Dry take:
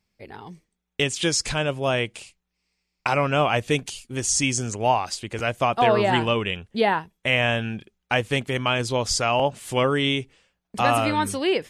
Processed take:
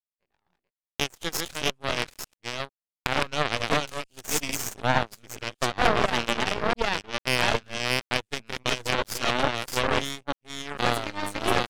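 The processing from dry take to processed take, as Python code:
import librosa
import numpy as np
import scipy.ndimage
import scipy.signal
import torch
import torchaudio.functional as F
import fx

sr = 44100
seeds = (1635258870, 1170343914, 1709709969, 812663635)

y = fx.reverse_delay(x, sr, ms=449, wet_db=-1.0)
y = fx.cheby_harmonics(y, sr, harmonics=(7,), levels_db=(-17,), full_scale_db=-5.0)
y = np.maximum(y, 0.0)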